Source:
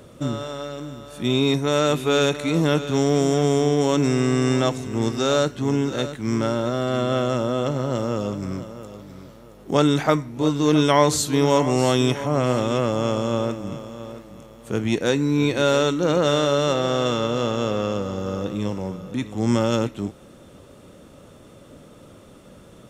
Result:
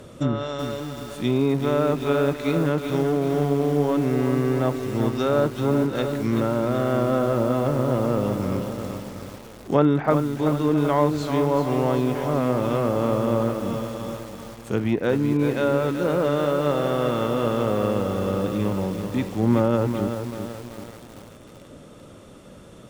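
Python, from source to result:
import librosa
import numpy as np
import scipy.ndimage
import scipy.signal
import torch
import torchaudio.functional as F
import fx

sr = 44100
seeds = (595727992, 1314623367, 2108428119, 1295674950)

y = fx.rider(x, sr, range_db=4, speed_s=2.0)
y = fx.env_lowpass_down(y, sr, base_hz=1500.0, full_db=-15.5)
y = fx.echo_crushed(y, sr, ms=382, feedback_pct=55, bits=6, wet_db=-7)
y = F.gain(torch.from_numpy(y), -1.5).numpy()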